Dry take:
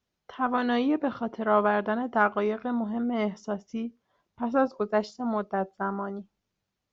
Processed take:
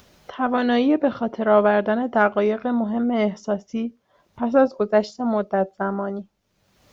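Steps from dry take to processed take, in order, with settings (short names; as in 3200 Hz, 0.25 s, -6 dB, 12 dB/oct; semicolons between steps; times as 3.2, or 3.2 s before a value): bell 580 Hz +5 dB 0.32 oct; upward compressor, threshold -43 dBFS; dynamic EQ 1100 Hz, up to -6 dB, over -38 dBFS, Q 1.9; gain +6.5 dB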